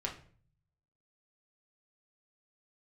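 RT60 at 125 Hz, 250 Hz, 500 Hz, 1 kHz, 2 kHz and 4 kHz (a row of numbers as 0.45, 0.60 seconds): 1.1, 0.70, 0.50, 0.40, 0.40, 0.35 seconds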